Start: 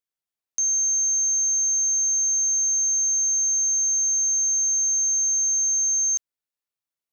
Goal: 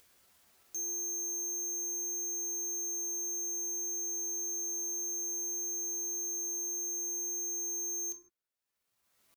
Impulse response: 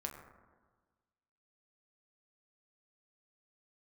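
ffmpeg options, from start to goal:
-filter_complex "[0:a]acompressor=mode=upward:threshold=-40dB:ratio=2.5,volume=31dB,asoftclip=hard,volume=-31dB,atempo=0.76[a];[1:a]atrim=start_sample=2205,afade=t=out:st=0.22:d=0.01,atrim=end_sample=10143[b];[a][b]afir=irnorm=-1:irlink=0"

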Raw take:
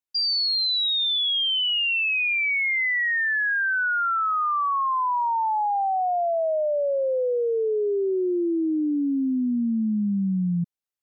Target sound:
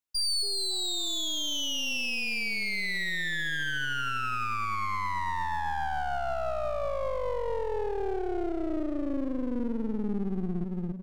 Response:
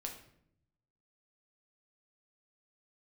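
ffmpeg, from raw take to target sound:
-af "aecho=1:1:280|560|840|1120|1400:0.473|0.185|0.072|0.0281|0.0109,aeval=exprs='clip(val(0),-1,0.0112)':c=same,alimiter=limit=-21.5dB:level=0:latency=1:release=148"

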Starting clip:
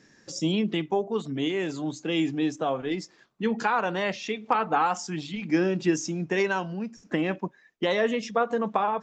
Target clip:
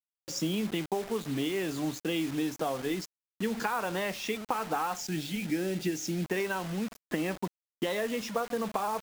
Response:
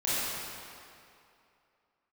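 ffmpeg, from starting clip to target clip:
-filter_complex "[0:a]acompressor=threshold=-27dB:ratio=10,acrusher=bits=6:mix=0:aa=0.000001,asettb=1/sr,asplit=3[a][b][c];[a]atrim=end=5.004[d];[b]atrim=start=5:end=6.24,asetpts=PTS-STARTPTS,afade=t=in:d=0.004:c=qsin,afade=t=out:st=1.236:d=0.004:c=qsin,equalizer=f=1.1k:t=o:w=0.33:g=-14.5[e];[c]atrim=start=6.236[f];[d][e]acrossfade=d=0.004:c1=hsin:c2=qsin[g];[g][f]acrossfade=d=0.004:c1=qsin:c2=hsin"

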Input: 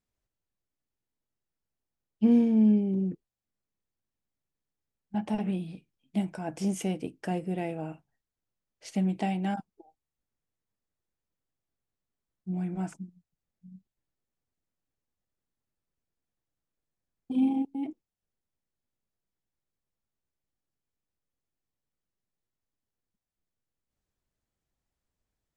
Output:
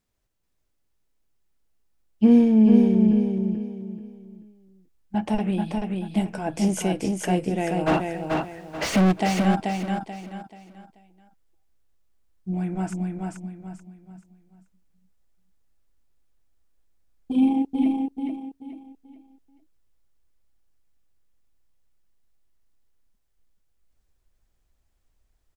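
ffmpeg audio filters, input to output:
-filter_complex "[0:a]asubboost=boost=4.5:cutoff=62,asplit=3[a][b][c];[a]afade=t=out:st=7.86:d=0.02[d];[b]asplit=2[e][f];[f]highpass=f=720:p=1,volume=45dB,asoftclip=type=tanh:threshold=-18dB[g];[e][g]amix=inputs=2:normalize=0,lowpass=f=1.1k:p=1,volume=-6dB,afade=t=in:st=7.86:d=0.02,afade=t=out:st=9.11:d=0.02[h];[c]afade=t=in:st=9.11:d=0.02[i];[d][h][i]amix=inputs=3:normalize=0,aecho=1:1:434|868|1302|1736:0.668|0.214|0.0684|0.0219,volume=7.5dB"

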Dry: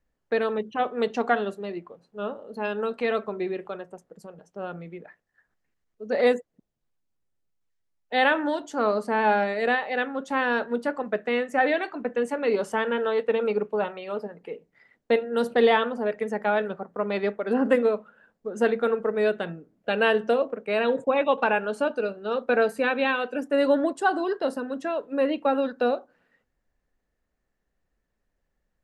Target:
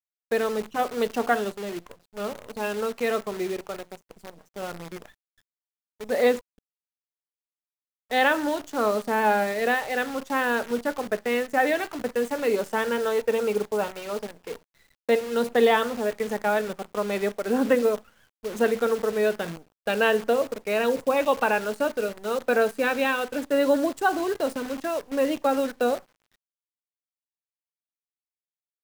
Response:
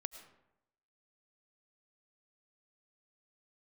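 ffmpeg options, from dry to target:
-af "atempo=1,acrusher=bits=7:dc=4:mix=0:aa=0.000001"

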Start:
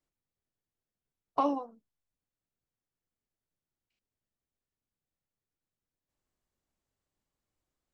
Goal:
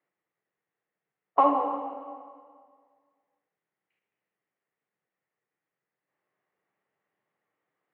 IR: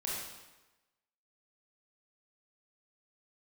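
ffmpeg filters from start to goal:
-filter_complex "[0:a]highpass=f=160:w=0.5412,highpass=f=160:w=1.3066,equalizer=f=240:t=q:w=4:g=-10,equalizer=f=460:t=q:w=4:g=4,equalizer=f=780:t=q:w=4:g=4,equalizer=f=1.2k:t=q:w=4:g=4,equalizer=f=1.9k:t=q:w=4:g=9,lowpass=f=2.7k:w=0.5412,lowpass=f=2.7k:w=1.3066,asplit=2[a][b];[1:a]atrim=start_sample=2205,asetrate=25137,aresample=44100[c];[b][c]afir=irnorm=-1:irlink=0,volume=-7.5dB[d];[a][d]amix=inputs=2:normalize=0,volume=1.5dB"

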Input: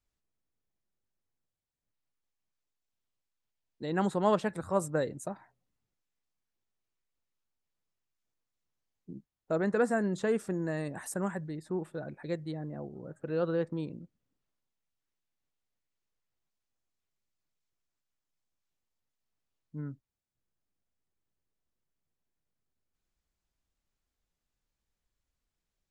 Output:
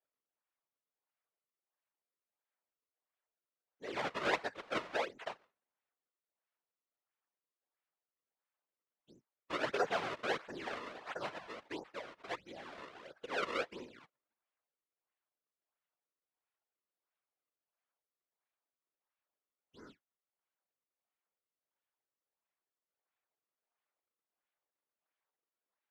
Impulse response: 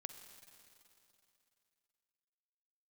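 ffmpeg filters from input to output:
-af "acrusher=samples=32:mix=1:aa=0.000001:lfo=1:lforange=51.2:lforate=1.5,highpass=650,lowpass=3.3k,afftfilt=real='hypot(re,im)*cos(2*PI*random(0))':imag='hypot(re,im)*sin(2*PI*random(1))':win_size=512:overlap=0.75,volume=5dB"

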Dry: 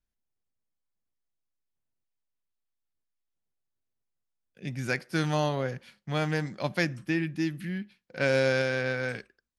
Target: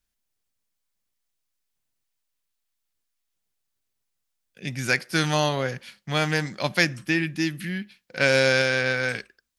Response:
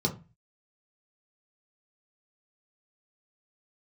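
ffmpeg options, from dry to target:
-af "tiltshelf=f=1.4k:g=-4.5,volume=7dB"

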